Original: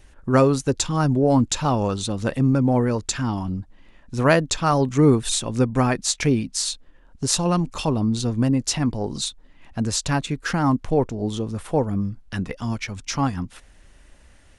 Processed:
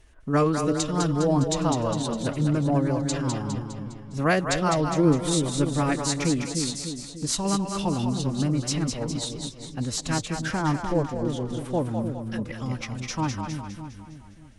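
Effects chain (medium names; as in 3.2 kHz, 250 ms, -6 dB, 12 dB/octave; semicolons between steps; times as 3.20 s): two-band feedback delay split 470 Hz, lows 298 ms, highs 204 ms, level -5 dB; formant-preserving pitch shift +2 st; trim -5 dB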